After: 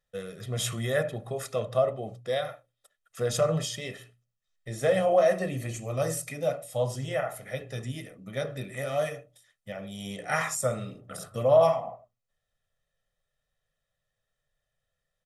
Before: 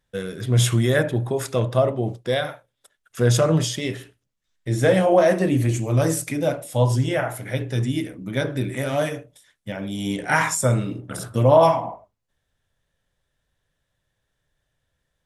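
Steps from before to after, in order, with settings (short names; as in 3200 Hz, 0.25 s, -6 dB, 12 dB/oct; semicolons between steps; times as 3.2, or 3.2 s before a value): bell 67 Hz -8.5 dB 1.5 oct; notches 60/120/180/240/300 Hz; comb 1.6 ms, depth 68%; gain -8.5 dB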